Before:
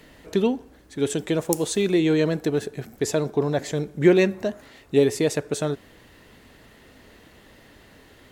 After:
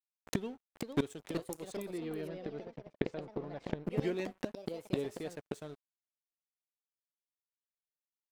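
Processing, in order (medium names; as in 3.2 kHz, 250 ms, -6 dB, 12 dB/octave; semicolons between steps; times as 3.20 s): crossover distortion -35.5 dBFS; inverted gate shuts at -23 dBFS, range -24 dB; 1.72–3.90 s: distance through air 240 m; ever faster or slower copies 528 ms, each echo +3 st, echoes 2, each echo -6 dB; trim +5 dB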